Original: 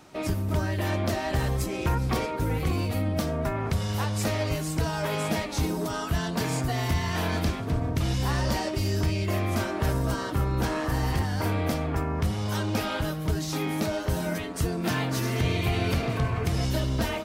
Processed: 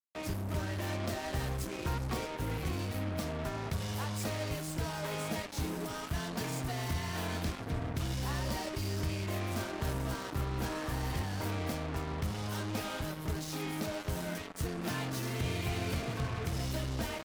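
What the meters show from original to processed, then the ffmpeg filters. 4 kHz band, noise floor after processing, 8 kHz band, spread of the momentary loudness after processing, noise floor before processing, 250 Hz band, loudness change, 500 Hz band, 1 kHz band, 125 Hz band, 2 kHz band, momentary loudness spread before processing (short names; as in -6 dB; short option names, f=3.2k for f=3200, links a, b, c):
-6.5 dB, -42 dBFS, -6.0 dB, 2 LU, -32 dBFS, -9.0 dB, -8.5 dB, -9.0 dB, -8.5 dB, -9.0 dB, -7.5 dB, 2 LU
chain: -af "acrusher=bits=4:mix=0:aa=0.5,volume=-9dB"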